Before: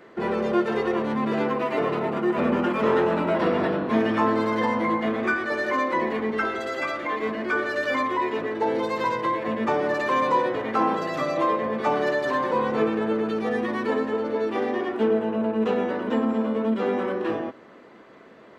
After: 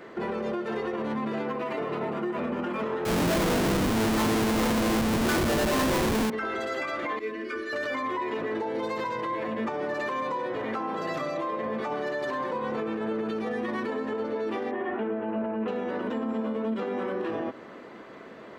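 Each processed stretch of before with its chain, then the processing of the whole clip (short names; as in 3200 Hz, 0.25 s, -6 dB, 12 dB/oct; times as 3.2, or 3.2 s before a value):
3.05–6.3 low shelf 330 Hz +8.5 dB + Schmitt trigger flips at -24.5 dBFS
7.19–7.73 fixed phaser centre 330 Hz, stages 4 + metallic resonator 78 Hz, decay 0.27 s, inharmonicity 0.008
14.71–15.68 LPF 2700 Hz 24 dB/oct + doubler 15 ms -5.5 dB
whole clip: compressor, threshold -29 dBFS; limiter -26.5 dBFS; gain +4 dB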